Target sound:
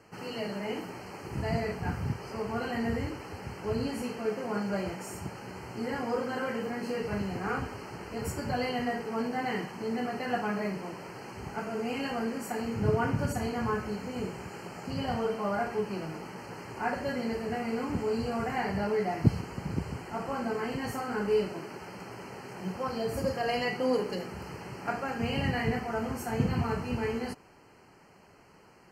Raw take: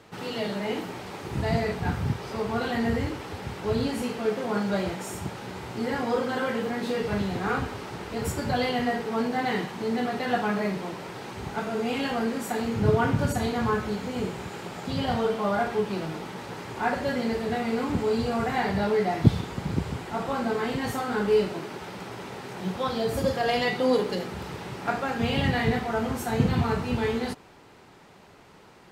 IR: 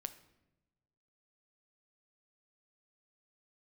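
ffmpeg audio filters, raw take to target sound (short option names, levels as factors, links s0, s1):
-af "asuperstop=centerf=3600:order=20:qfactor=3.7,volume=0.562"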